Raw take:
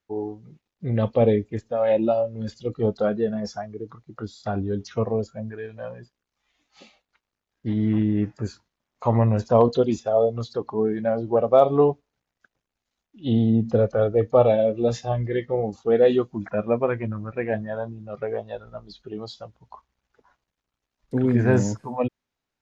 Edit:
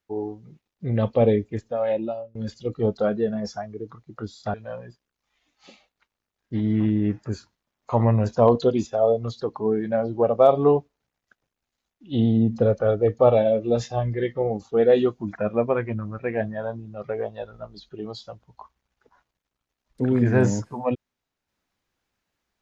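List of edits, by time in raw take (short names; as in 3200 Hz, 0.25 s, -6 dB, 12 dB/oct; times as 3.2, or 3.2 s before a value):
1.64–2.35 fade out linear, to -23.5 dB
4.54–5.67 cut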